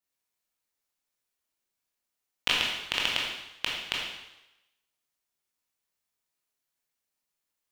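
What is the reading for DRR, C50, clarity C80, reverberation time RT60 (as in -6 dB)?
-4.0 dB, 1.0 dB, 3.5 dB, 0.95 s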